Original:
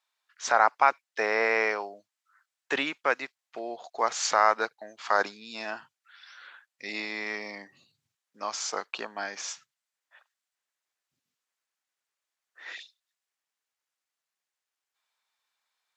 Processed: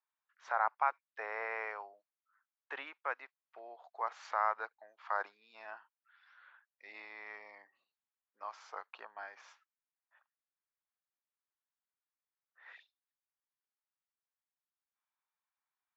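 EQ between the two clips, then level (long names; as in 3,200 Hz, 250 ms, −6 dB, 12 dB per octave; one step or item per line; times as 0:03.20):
four-pole ladder band-pass 950 Hz, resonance 40%
parametric band 730 Hz −7.5 dB 0.9 octaves
+3.0 dB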